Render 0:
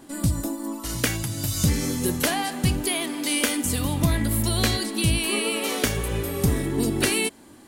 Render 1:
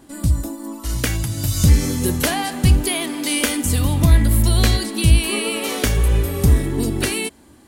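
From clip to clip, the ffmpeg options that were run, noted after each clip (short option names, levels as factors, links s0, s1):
-af "equalizer=f=61:w=1.2:g=12.5,dynaudnorm=f=250:g=9:m=3.76,volume=0.891"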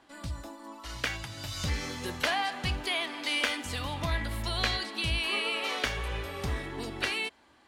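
-filter_complex "[0:a]acrossover=split=600 4900:gain=0.158 1 0.0891[s0][s1][s2];[s0][s1][s2]amix=inputs=3:normalize=0,asoftclip=type=tanh:threshold=0.422,volume=0.631"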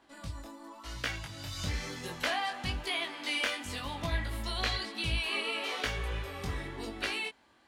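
-af "flanger=delay=17.5:depth=4.6:speed=1"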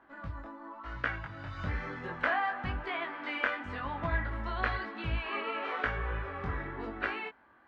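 -af "lowpass=f=1500:t=q:w=2.2"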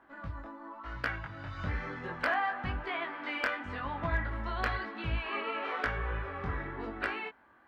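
-af "asoftclip=type=hard:threshold=0.0944"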